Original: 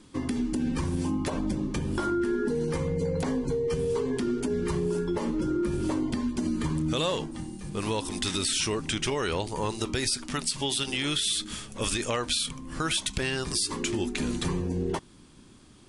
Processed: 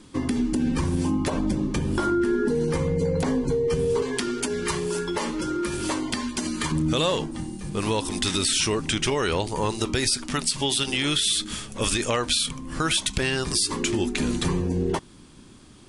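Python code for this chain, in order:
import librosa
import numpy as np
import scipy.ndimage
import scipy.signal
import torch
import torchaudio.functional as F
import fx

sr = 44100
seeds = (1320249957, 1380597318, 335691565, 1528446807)

y = fx.tilt_shelf(x, sr, db=-8.0, hz=680.0, at=(4.02, 6.72))
y = y * librosa.db_to_amplitude(4.5)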